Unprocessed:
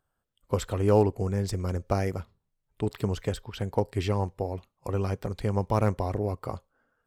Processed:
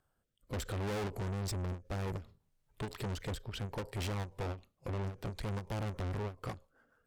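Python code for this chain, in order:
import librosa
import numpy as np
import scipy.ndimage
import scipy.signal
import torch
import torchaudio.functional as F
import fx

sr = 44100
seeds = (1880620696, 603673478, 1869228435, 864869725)

y = fx.rotary_switch(x, sr, hz=0.65, then_hz=6.7, switch_at_s=5.42)
y = fx.tube_stage(y, sr, drive_db=42.0, bias=0.55)
y = fx.end_taper(y, sr, db_per_s=210.0)
y = y * 10.0 ** (7.0 / 20.0)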